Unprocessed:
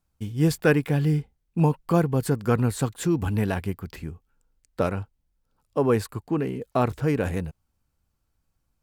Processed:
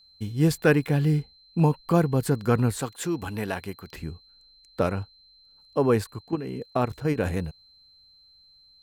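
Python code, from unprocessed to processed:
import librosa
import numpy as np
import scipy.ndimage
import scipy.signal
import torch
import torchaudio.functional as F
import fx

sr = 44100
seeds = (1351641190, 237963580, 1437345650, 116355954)

y = fx.low_shelf(x, sr, hz=240.0, db=-12.0, at=(2.81, 3.93))
y = fx.level_steps(y, sr, step_db=11, at=(6.04, 7.18))
y = y + 10.0 ** (-54.0 / 20.0) * np.sin(2.0 * np.pi * 4100.0 * np.arange(len(y)) / sr)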